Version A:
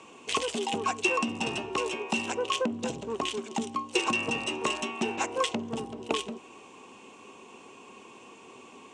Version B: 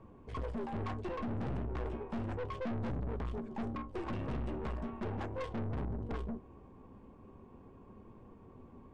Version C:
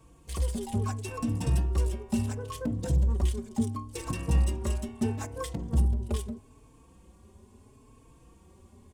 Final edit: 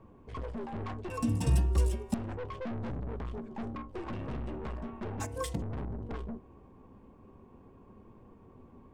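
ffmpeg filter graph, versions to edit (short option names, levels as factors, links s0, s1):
-filter_complex "[2:a]asplit=2[s0][s1];[1:a]asplit=3[s2][s3][s4];[s2]atrim=end=1.102[s5];[s0]atrim=start=1.098:end=2.142[s6];[s3]atrim=start=2.138:end=5.202[s7];[s1]atrim=start=5.198:end=5.622[s8];[s4]atrim=start=5.618[s9];[s5][s6]acrossfade=d=0.004:c1=hsin:c2=hsin[s10];[s10][s7]acrossfade=d=0.004:c1=hsin:c2=hsin[s11];[s11][s8]acrossfade=d=0.004:c1=hsin:c2=hsin[s12];[s12][s9]acrossfade=d=0.004:c1=hsin:c2=hsin"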